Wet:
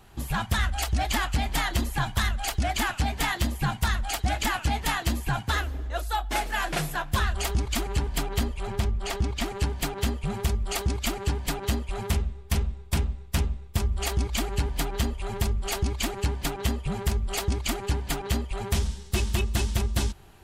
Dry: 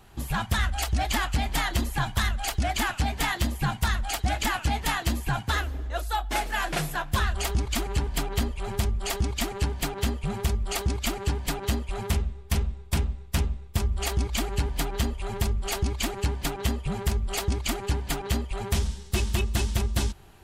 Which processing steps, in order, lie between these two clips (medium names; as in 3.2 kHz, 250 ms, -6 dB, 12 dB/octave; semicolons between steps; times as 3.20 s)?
8.67–9.46 s: treble shelf 7.2 kHz -10.5 dB